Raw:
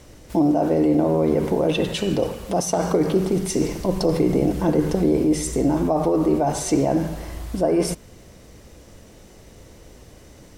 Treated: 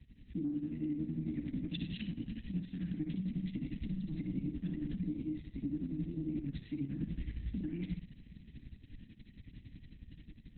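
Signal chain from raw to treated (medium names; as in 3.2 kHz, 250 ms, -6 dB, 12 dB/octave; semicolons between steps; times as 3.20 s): Chebyshev band-stop 300–1700 Hz, order 5; 3.68–6.01 s: treble shelf 7.7 kHz +11.5 dB; tremolo triangle 11 Hz, depth 100%; compression 16:1, threshold -31 dBFS, peak gain reduction 14 dB; flutter echo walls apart 10 m, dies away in 0.4 s; level rider gain up to 6 dB; tilt shelf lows +4.5 dB, about 670 Hz; peak limiter -21 dBFS, peak gain reduction 7 dB; trim -8 dB; Opus 6 kbps 48 kHz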